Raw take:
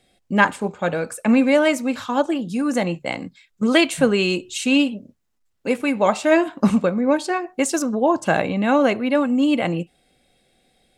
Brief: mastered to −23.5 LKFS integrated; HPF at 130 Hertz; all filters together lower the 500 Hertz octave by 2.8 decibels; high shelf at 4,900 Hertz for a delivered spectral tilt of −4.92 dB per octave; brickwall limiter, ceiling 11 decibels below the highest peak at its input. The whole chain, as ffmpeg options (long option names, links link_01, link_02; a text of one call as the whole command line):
ffmpeg -i in.wav -af "highpass=130,equalizer=frequency=500:width_type=o:gain=-3.5,highshelf=frequency=4900:gain=-4.5,alimiter=limit=-12.5dB:level=0:latency=1" out.wav